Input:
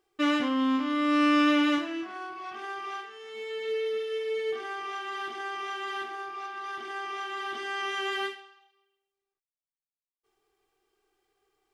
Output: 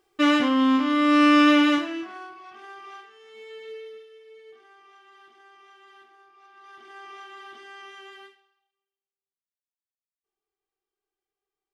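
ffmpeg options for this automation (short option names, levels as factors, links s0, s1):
-af "volume=7.08,afade=t=out:st=1.54:d=0.89:silence=0.251189,afade=t=out:st=3.53:d=0.6:silence=0.251189,afade=t=in:st=6.38:d=0.72:silence=0.281838,afade=t=out:st=7.1:d=1.19:silence=0.334965"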